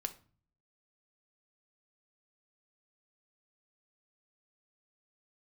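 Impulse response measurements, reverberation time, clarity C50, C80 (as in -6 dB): 0.40 s, 15.5 dB, 21.0 dB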